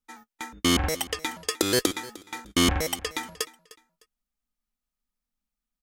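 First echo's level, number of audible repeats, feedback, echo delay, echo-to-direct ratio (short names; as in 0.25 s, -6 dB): -19.5 dB, 2, 28%, 0.304 s, -19.0 dB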